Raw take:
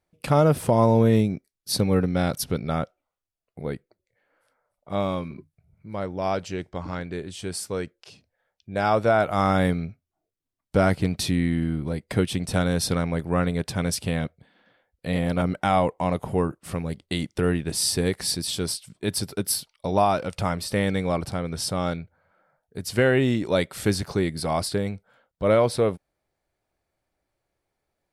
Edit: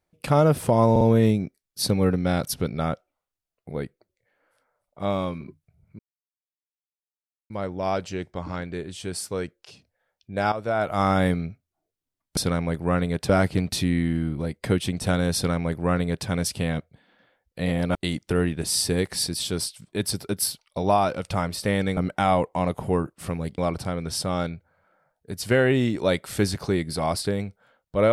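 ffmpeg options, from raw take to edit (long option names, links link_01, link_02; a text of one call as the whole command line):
ffmpeg -i in.wav -filter_complex "[0:a]asplit=10[link_01][link_02][link_03][link_04][link_05][link_06][link_07][link_08][link_09][link_10];[link_01]atrim=end=0.962[link_11];[link_02]atrim=start=0.908:end=0.962[link_12];[link_03]atrim=start=0.908:end=5.89,asetpts=PTS-STARTPTS,afade=type=out:start_time=4.978:duration=0.004:curve=hsin,apad=pad_dur=1.51[link_13];[link_04]atrim=start=5.89:end=8.91,asetpts=PTS-STARTPTS,afade=type=in:duration=0.004:curve=hsin,afade=type=out:start_time=3.016:duration=0.004:curve=hsin:silence=0.223872[link_14];[link_05]atrim=start=8.91:end=10.762,asetpts=PTS-STARTPTS,afade=type=in:duration=0.5:silence=0.223872[link_15];[link_06]atrim=start=12.818:end=13.742[link_16];[link_07]atrim=start=10.758:end=15.422[link_17];[link_08]atrim=start=17.028:end=21.052[link_18];[link_09]atrim=start=15.418:end=17.032[link_19];[link_10]atrim=start=21.048[link_20];[link_11][link_12]acrossfade=duration=0.004:curve1=hsin:curve2=hsin[link_21];[link_13][link_14][link_15]concat=n=3:v=0:a=1[link_22];[link_21][link_22]acrossfade=duration=0.004:curve1=hsin:curve2=hsin[link_23];[link_23][link_16]acrossfade=duration=0.004:curve1=hsin:curve2=hsin[link_24];[link_24][link_17]acrossfade=duration=0.004:curve1=hsin:curve2=hsin[link_25];[link_25][link_18]acrossfade=duration=0.004:curve1=hsin:curve2=hsin[link_26];[link_26][link_19]acrossfade=duration=0.004:curve1=hsin:curve2=hsin[link_27];[link_27][link_20]acrossfade=duration=0.004:curve1=hsin:curve2=hsin" out.wav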